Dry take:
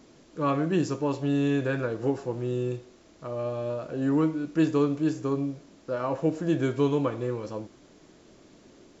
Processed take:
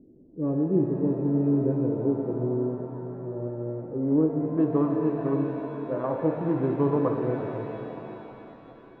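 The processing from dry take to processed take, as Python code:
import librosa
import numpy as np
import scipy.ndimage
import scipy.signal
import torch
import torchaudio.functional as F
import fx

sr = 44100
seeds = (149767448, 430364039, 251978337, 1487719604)

y = fx.wiener(x, sr, points=41)
y = fx.filter_sweep_lowpass(y, sr, from_hz=370.0, to_hz=1000.0, start_s=3.68, end_s=4.88, q=1.3)
y = fx.rev_shimmer(y, sr, seeds[0], rt60_s=3.5, semitones=7, shimmer_db=-8, drr_db=3.0)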